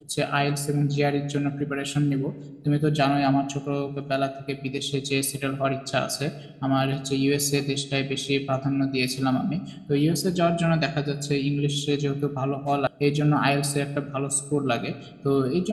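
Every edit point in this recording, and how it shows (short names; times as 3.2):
12.87 sound cut off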